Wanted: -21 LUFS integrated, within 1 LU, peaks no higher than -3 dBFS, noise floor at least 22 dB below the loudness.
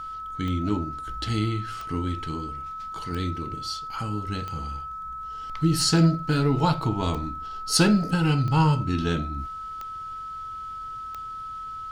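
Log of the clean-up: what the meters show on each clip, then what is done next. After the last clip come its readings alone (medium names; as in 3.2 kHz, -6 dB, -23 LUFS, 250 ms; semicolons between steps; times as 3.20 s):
clicks found 9; steady tone 1.3 kHz; tone level -33 dBFS; loudness -26.5 LUFS; peak level -6.5 dBFS; loudness target -21.0 LUFS
-> de-click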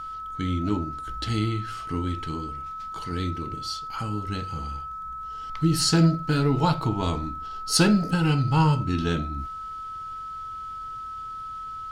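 clicks found 0; steady tone 1.3 kHz; tone level -33 dBFS
-> band-stop 1.3 kHz, Q 30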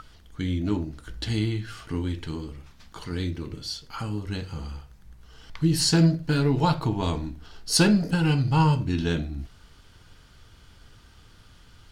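steady tone not found; loudness -25.5 LUFS; peak level -6.5 dBFS; loudness target -21.0 LUFS
-> trim +4.5 dB; peak limiter -3 dBFS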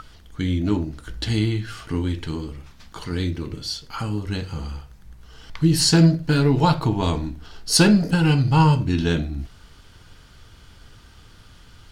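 loudness -21.0 LUFS; peak level -3.0 dBFS; noise floor -49 dBFS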